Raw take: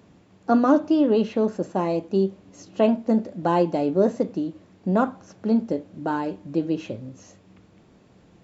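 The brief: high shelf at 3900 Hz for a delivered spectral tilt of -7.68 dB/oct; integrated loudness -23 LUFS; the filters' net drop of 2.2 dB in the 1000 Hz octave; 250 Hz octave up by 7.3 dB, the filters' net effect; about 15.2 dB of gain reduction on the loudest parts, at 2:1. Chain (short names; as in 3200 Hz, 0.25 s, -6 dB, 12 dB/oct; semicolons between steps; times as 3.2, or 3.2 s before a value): bell 250 Hz +9 dB; bell 1000 Hz -3.5 dB; high shelf 3900 Hz -4.5 dB; compressor 2:1, threshold -36 dBFS; gain +8 dB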